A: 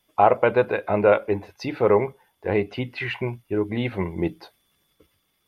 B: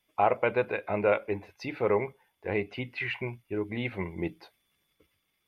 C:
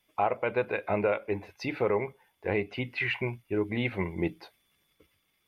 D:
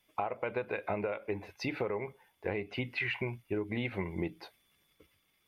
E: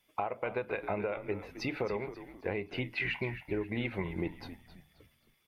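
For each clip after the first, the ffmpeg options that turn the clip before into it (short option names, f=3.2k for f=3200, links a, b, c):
-af "equalizer=f=2.3k:w=2.4:g=7,volume=-8dB"
-af "alimiter=limit=-18dB:level=0:latency=1:release=360,volume=3dB"
-af "acompressor=threshold=-30dB:ratio=10"
-filter_complex "[0:a]asplit=5[a][b][c][d][e];[b]adelay=266,afreqshift=-79,volume=-12.5dB[f];[c]adelay=532,afreqshift=-158,volume=-20.9dB[g];[d]adelay=798,afreqshift=-237,volume=-29.3dB[h];[e]adelay=1064,afreqshift=-316,volume=-37.7dB[i];[a][f][g][h][i]amix=inputs=5:normalize=0"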